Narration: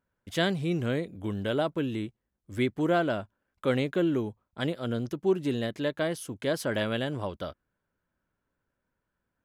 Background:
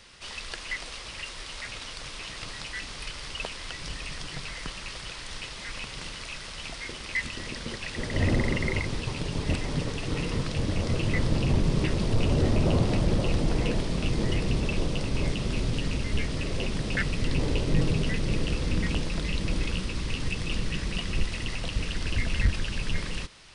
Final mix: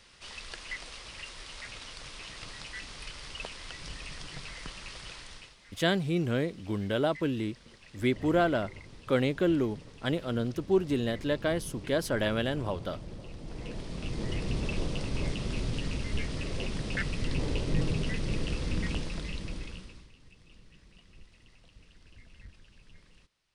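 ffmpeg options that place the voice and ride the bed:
ffmpeg -i stem1.wav -i stem2.wav -filter_complex "[0:a]adelay=5450,volume=0dB[link_01];[1:a]volume=9dB,afade=type=out:start_time=5.14:duration=0.43:silence=0.211349,afade=type=in:start_time=13.39:duration=1.29:silence=0.188365,afade=type=out:start_time=18.89:duration=1.22:silence=0.0749894[link_02];[link_01][link_02]amix=inputs=2:normalize=0" out.wav

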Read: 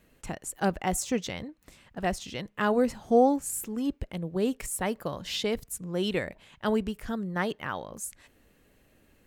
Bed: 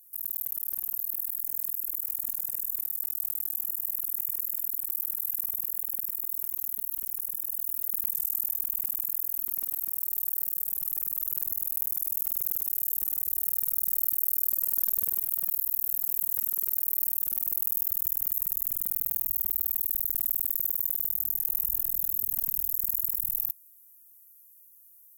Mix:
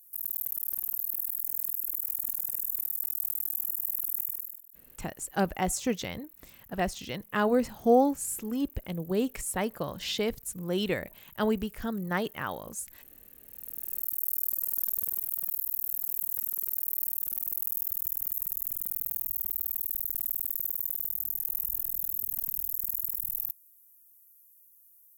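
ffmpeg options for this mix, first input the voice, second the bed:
ffmpeg -i stem1.wav -i stem2.wav -filter_complex "[0:a]adelay=4750,volume=-0.5dB[link_01];[1:a]volume=19dB,afade=type=out:start_time=4.18:duration=0.44:silence=0.0749894,afade=type=in:start_time=13.46:duration=0.84:silence=0.105925[link_02];[link_01][link_02]amix=inputs=2:normalize=0" out.wav

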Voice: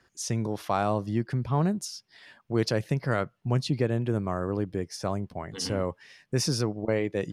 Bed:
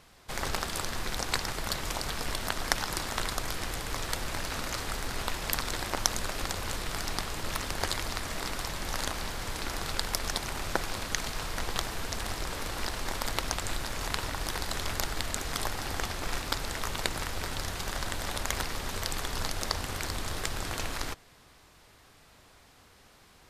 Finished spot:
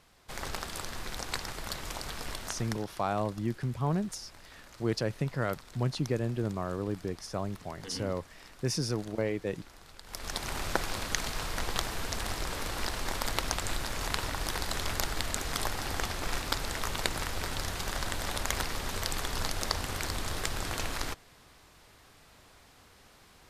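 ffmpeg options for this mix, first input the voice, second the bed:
ffmpeg -i stem1.wav -i stem2.wav -filter_complex "[0:a]adelay=2300,volume=-4.5dB[link_01];[1:a]volume=14dB,afade=type=out:start_time=2.31:duration=0.55:silence=0.199526,afade=type=in:start_time=10.04:duration=0.49:silence=0.112202[link_02];[link_01][link_02]amix=inputs=2:normalize=0" out.wav

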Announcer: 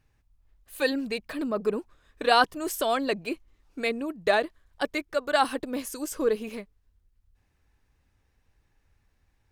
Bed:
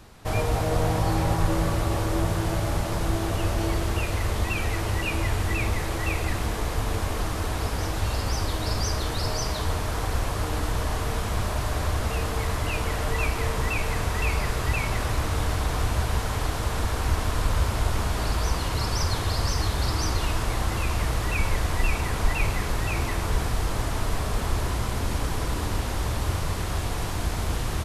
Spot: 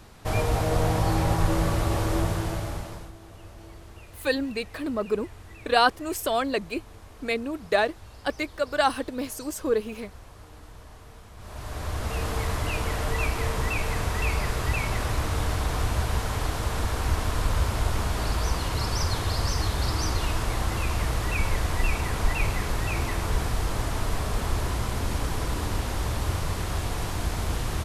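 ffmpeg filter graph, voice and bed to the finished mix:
ffmpeg -i stem1.wav -i stem2.wav -filter_complex "[0:a]adelay=3450,volume=0.5dB[link_01];[1:a]volume=19dB,afade=type=out:start_time=2.15:duration=0.97:silence=0.1,afade=type=in:start_time=11.37:duration=0.94:silence=0.112202[link_02];[link_01][link_02]amix=inputs=2:normalize=0" out.wav

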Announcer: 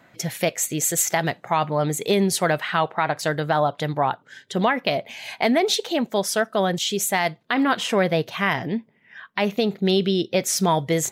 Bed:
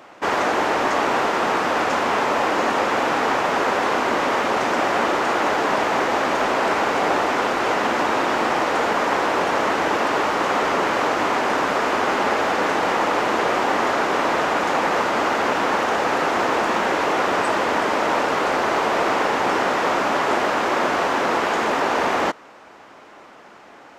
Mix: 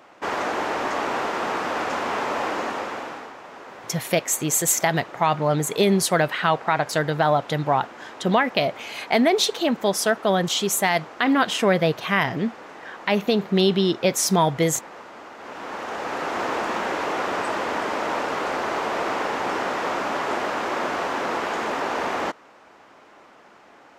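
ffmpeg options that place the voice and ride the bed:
ffmpeg -i stem1.wav -i stem2.wav -filter_complex "[0:a]adelay=3700,volume=1dB[link_01];[1:a]volume=10dB,afade=type=out:start_time=2.47:duration=0.85:silence=0.16788,afade=type=in:start_time=15.37:duration=1.1:silence=0.16788[link_02];[link_01][link_02]amix=inputs=2:normalize=0" out.wav

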